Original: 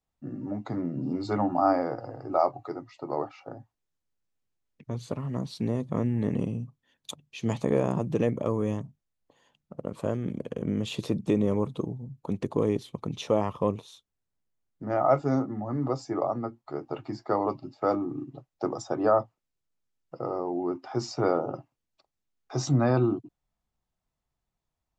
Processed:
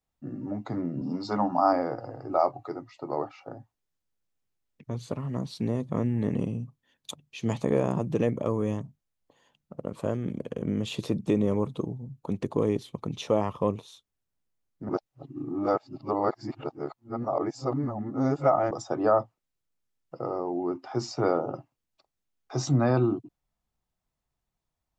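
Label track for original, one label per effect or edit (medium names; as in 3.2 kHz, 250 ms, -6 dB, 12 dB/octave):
1.010000	1.730000	cabinet simulation 160–7700 Hz, peaks and dips at 190 Hz +5 dB, 350 Hz -8 dB, 1 kHz +6 dB, 2.3 kHz -5 dB, 5.3 kHz +9 dB
14.890000	18.710000	reverse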